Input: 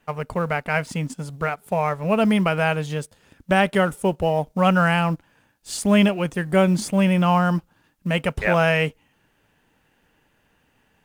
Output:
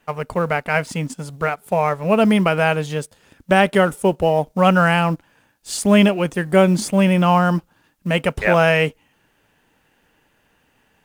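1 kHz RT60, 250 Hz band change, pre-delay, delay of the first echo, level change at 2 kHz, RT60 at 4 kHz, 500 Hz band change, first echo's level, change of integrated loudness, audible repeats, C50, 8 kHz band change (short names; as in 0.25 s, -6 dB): none, +3.0 dB, none, none, +3.0 dB, none, +4.5 dB, none, +3.5 dB, none, none, +4.0 dB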